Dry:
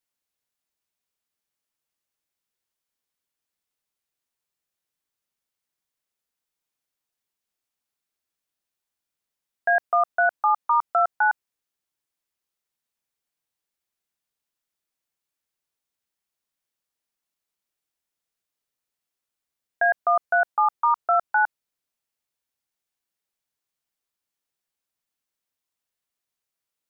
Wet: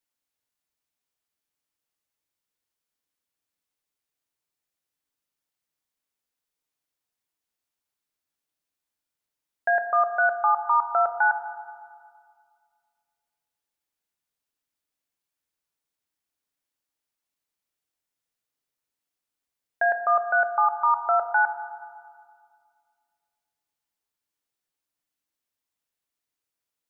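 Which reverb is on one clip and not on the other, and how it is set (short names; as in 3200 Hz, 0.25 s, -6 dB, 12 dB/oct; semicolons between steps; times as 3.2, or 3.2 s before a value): FDN reverb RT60 2 s, low-frequency decay 1.2×, high-frequency decay 0.3×, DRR 8 dB; gain -1.5 dB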